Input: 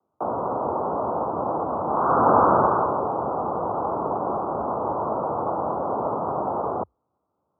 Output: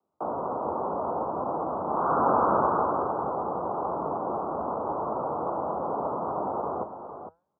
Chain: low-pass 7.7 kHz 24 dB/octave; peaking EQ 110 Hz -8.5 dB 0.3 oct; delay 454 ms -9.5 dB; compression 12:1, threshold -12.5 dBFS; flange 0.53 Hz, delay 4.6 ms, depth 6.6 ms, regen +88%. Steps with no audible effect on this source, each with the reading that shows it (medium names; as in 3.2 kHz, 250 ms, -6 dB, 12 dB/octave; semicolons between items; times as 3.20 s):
low-pass 7.7 kHz: input has nothing above 1.6 kHz